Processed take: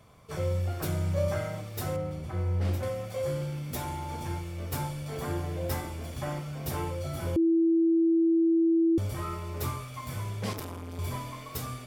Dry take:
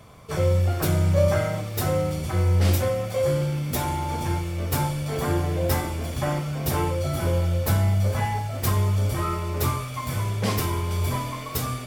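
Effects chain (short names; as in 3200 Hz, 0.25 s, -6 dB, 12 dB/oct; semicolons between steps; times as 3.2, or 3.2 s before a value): 1.96–2.83 high shelf 3000 Hz -11 dB; 7.36–8.98 bleep 330 Hz -11.5 dBFS; 10.53–10.99 core saturation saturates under 800 Hz; gain -8.5 dB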